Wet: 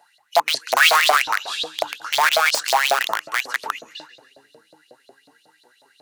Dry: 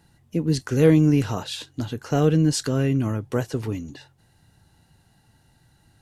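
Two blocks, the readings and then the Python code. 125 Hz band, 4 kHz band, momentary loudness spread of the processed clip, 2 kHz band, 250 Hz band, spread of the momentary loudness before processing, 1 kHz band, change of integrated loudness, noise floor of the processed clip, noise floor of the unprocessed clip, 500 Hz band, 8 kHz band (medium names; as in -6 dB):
under -35 dB, +14.5 dB, 12 LU, +18.5 dB, -27.5 dB, 14 LU, +16.5 dB, +3.5 dB, -61 dBFS, -61 dBFS, -1.5 dB, +8.0 dB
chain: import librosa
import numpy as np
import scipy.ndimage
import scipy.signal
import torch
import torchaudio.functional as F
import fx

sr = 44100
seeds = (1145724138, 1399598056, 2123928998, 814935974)

y = fx.echo_split(x, sr, split_hz=440.0, low_ms=772, high_ms=138, feedback_pct=52, wet_db=-11.5)
y = (np.mod(10.0 ** (15.5 / 20.0) * y + 1.0, 2.0) - 1.0) / 10.0 ** (15.5 / 20.0)
y = fx.filter_lfo_highpass(y, sr, shape='saw_up', hz=5.5, low_hz=620.0, high_hz=4400.0, q=7.1)
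y = y * 10.0 ** (1.0 / 20.0)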